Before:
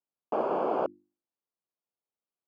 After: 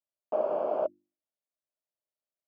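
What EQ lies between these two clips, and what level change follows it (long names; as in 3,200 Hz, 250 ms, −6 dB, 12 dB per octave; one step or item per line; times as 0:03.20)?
parametric band 610 Hz +15 dB 0.33 octaves
−8.5 dB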